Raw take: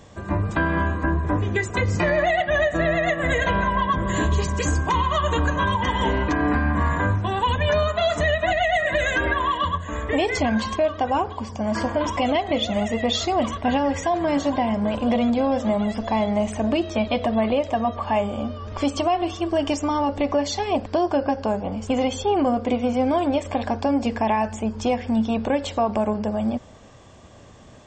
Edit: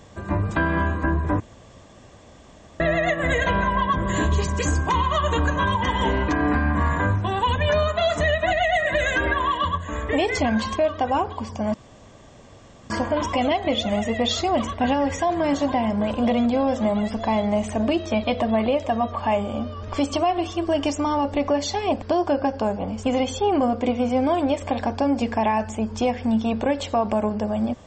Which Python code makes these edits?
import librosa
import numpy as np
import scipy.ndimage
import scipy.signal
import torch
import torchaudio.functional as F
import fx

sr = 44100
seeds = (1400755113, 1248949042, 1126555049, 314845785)

y = fx.edit(x, sr, fx.room_tone_fill(start_s=1.4, length_s=1.4),
    fx.insert_room_tone(at_s=11.74, length_s=1.16), tone=tone)